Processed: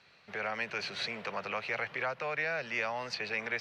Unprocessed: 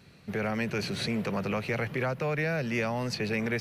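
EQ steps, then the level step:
three-way crossover with the lows and the highs turned down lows −19 dB, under 570 Hz, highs −24 dB, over 5,800 Hz
0.0 dB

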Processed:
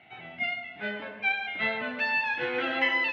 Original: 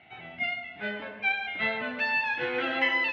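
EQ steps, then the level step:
high-pass filter 87 Hz
0.0 dB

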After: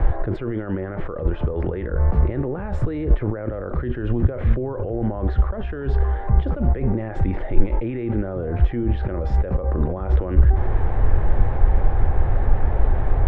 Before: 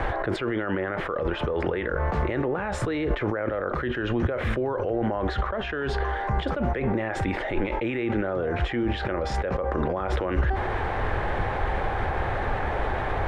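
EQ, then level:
spectral tilt −4 dB per octave
−5.5 dB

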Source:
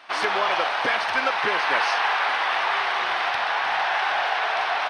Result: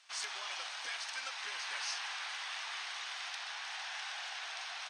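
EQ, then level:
resonant band-pass 7,300 Hz, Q 3.8
+5.5 dB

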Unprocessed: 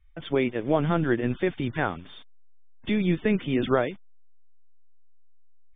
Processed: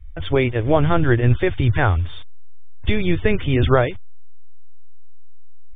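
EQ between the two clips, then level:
low shelf with overshoot 130 Hz +13 dB, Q 3
+7.5 dB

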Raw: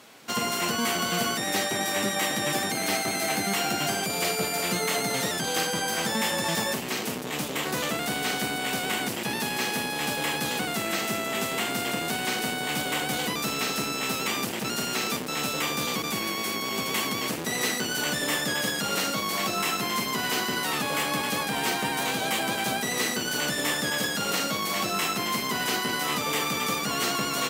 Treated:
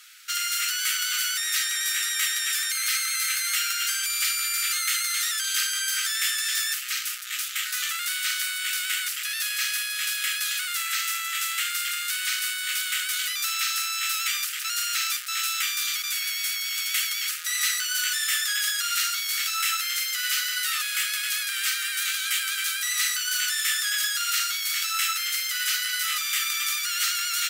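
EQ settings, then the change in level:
linear-phase brick-wall high-pass 1,200 Hz
high-shelf EQ 3,600 Hz +6.5 dB
0.0 dB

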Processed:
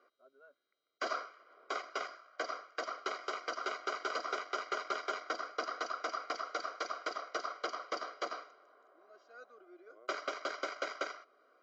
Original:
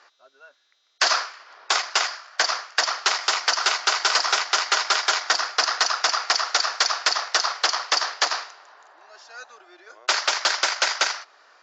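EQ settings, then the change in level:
moving average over 50 samples
low-shelf EQ 190 Hz −7 dB
+1.5 dB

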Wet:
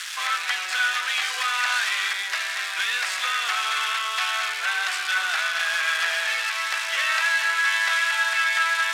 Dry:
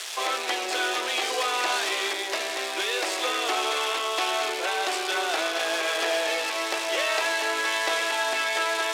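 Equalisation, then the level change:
high-pass with resonance 1,500 Hz, resonance Q 2.4
0.0 dB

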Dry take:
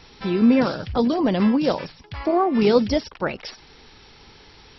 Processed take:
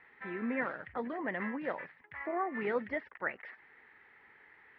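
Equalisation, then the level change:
high-pass filter 550 Hz 6 dB per octave
transistor ladder low-pass 2,000 Hz, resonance 80%
high-frequency loss of the air 220 metres
0.0 dB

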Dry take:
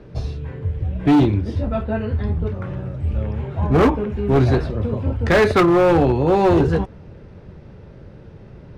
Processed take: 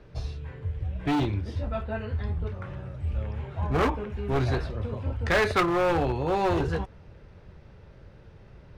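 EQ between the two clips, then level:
parametric band 240 Hz −9 dB 2.7 octaves
−4.0 dB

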